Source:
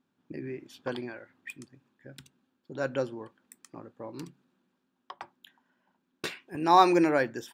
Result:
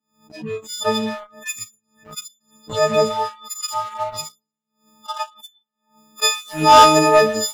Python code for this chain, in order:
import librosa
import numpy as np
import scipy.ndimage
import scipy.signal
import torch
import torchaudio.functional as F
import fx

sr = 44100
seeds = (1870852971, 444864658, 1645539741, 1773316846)

y = fx.freq_snap(x, sr, grid_st=6)
y = fx.cheby_harmonics(y, sr, harmonics=(5,), levels_db=(-24,), full_scale_db=-5.0)
y = y + 0.44 * np.pad(y, (int(4.8 * sr / 1000.0), 0))[:len(y)]
y = fx.echo_feedback(y, sr, ms=114, feedback_pct=35, wet_db=-15.5)
y = fx.rev_schroeder(y, sr, rt60_s=0.67, comb_ms=25, drr_db=12.5)
y = fx.spec_box(y, sr, start_s=3.1, length_s=0.94, low_hz=750.0, high_hz=5000.0, gain_db=10)
y = fx.graphic_eq_31(y, sr, hz=(100, 250, 800, 2500, 6300), db=(12, 5, 5, -4, 12))
y = fx.leveller(y, sr, passes=2)
y = fx.noise_reduce_blind(y, sr, reduce_db=23)
y = fx.pre_swell(y, sr, db_per_s=140.0)
y = y * 10.0 ** (-2.0 / 20.0)